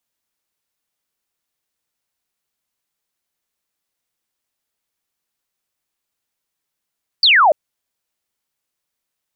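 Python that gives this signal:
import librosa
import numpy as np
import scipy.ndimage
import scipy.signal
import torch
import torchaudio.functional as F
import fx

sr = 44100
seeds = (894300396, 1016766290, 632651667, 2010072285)

y = fx.laser_zap(sr, level_db=-8, start_hz=4800.0, end_hz=560.0, length_s=0.29, wave='sine')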